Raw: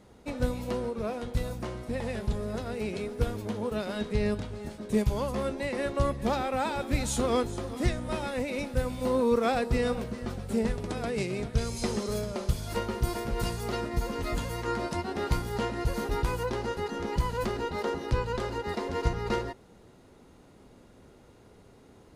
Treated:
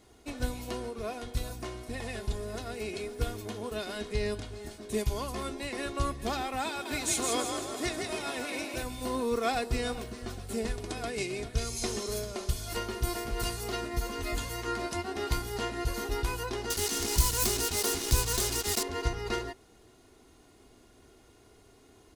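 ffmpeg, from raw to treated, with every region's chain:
ffmpeg -i in.wav -filter_complex "[0:a]asettb=1/sr,asplit=3[link_01][link_02][link_03];[link_01]atrim=end=6.694[link_04];[link_02]atrim=start=6.69:end=8.83,asetpts=PTS-STARTPTS,afade=type=in:duration=0.004:curve=qsin,afade=type=out:start_time=2.136:duration=0.004:curve=qsin,highpass=frequency=240:poles=1,asplit=7[link_05][link_06][link_07][link_08][link_09][link_10][link_11];[link_06]adelay=163,afreqshift=48,volume=-4dB[link_12];[link_07]adelay=326,afreqshift=96,volume=-10.4dB[link_13];[link_08]adelay=489,afreqshift=144,volume=-16.8dB[link_14];[link_09]adelay=652,afreqshift=192,volume=-23.1dB[link_15];[link_10]adelay=815,afreqshift=240,volume=-29.5dB[link_16];[link_11]adelay=978,afreqshift=288,volume=-35.9dB[link_17];[link_05][link_12][link_13][link_14][link_15][link_16][link_17]amix=inputs=7:normalize=0,atrim=end_sample=94374[link_18];[link_03]atrim=start=8.826[link_19];[link_04][link_18]acrossfade=duration=0.004:curve1=hsin:curve2=qsin[link_20];[link_20][link_19]acrossfade=duration=0.004:curve1=qsin:curve2=hsin,asettb=1/sr,asplit=3[link_21][link_22][link_23];[link_21]atrim=end=16.704[link_24];[link_22]atrim=start=16.7:end=18.83,asetpts=PTS-STARTPTS,afade=type=in:duration=0.004:curve=qsin,afade=type=out:start_time=2.126:duration=0.004:curve=qsin,acrusher=bits=5:mix=0:aa=0.5,bass=frequency=250:gain=5,treble=frequency=4000:gain=14[link_25];[link_23]atrim=start=18.826[link_26];[link_24][link_25]acrossfade=duration=0.004:curve1=hsin:curve2=qsin[link_27];[link_27][link_26]acrossfade=duration=0.004:curve1=qsin:curve2=hsin,highshelf=frequency=2500:gain=9,aecho=1:1:2.8:0.52,volume=-5dB" out.wav

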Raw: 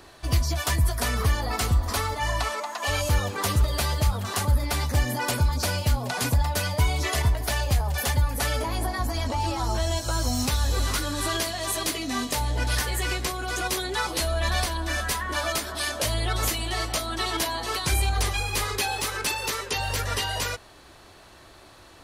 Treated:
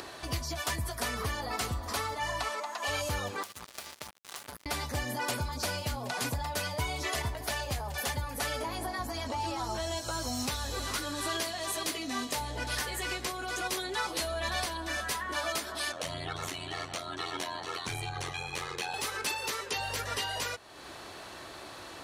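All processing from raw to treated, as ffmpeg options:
ffmpeg -i in.wav -filter_complex "[0:a]asettb=1/sr,asplit=3[link_01][link_02][link_03];[link_01]atrim=end=3.434[link_04];[link_02]atrim=start=3.43:end=4.66,asetpts=PTS-STARTPTS,afade=type=in:duration=0.004:curve=qsin,afade=type=out:start_time=1.226:duration=0.004:curve=qsin,lowshelf=frequency=460:gain=-11.5,acrusher=bits=3:mix=0:aa=0.5,acompressor=threshold=-34dB:ratio=16:attack=3.2:release=140:knee=1:detection=peak[link_05];[link_03]atrim=start=4.656[link_06];[link_04][link_05]acrossfade=duration=0.004:curve1=hsin:curve2=qsin[link_07];[link_07][link_06]acrossfade=duration=0.004:curve1=qsin:curve2=hsin,asettb=1/sr,asplit=3[link_08][link_09][link_10];[link_08]atrim=end=15.924[link_11];[link_09]atrim=start=15.92:end=18.94,asetpts=PTS-STARTPTS,afade=type=in:duration=0.004:curve=qsin,afade=type=out:start_time=3.016:duration=0.004:curve=qsin,bandreject=frequency=4900:width=9.8,aeval=exprs='val(0)*sin(2*PI*43*n/s)':channel_layout=same,adynamicsmooth=sensitivity=3:basefreq=7400[link_12];[link_10]atrim=start=18.936[link_13];[link_11][link_12]acrossfade=duration=0.004:curve1=hsin:curve2=qsin[link_14];[link_14][link_13]acrossfade=duration=0.004:curve1=qsin:curve2=hsin,highpass=frequency=200:poles=1,highshelf=frequency=10000:gain=-4,acompressor=mode=upward:threshold=-29dB:ratio=2.5,volume=-5dB" out.wav

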